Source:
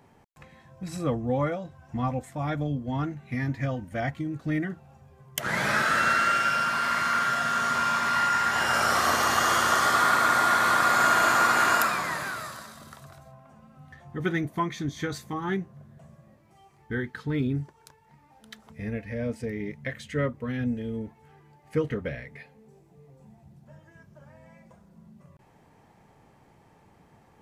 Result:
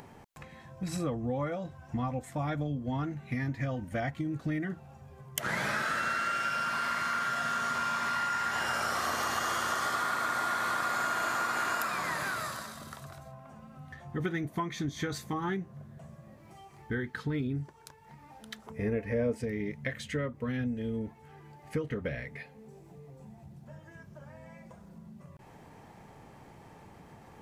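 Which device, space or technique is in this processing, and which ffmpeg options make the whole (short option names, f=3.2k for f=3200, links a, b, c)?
upward and downward compression: -filter_complex "[0:a]acompressor=mode=upward:threshold=-47dB:ratio=2.5,acompressor=threshold=-31dB:ratio=5,asettb=1/sr,asplit=3[a][b][c];[a]atrim=end=18.664[d];[b]atrim=start=18.66:end=19.38,asetpts=PTS-STARTPTS,afade=t=in:d=0.004:c=qsin,afade=t=out:st=0.716:d=0.004:c=qsin,equalizer=f=400:t=o:w=0.67:g=10,equalizer=f=1k:t=o:w=0.67:g=5,equalizer=f=4k:t=o:w=0.67:g=-6[e];[c]atrim=start=19.376[f];[d][e]acrossfade=d=0.004:c1=hsin:c2=qsin[g];[g][f]acrossfade=d=0.004:c1=qsin:c2=hsin,volume=1.5dB"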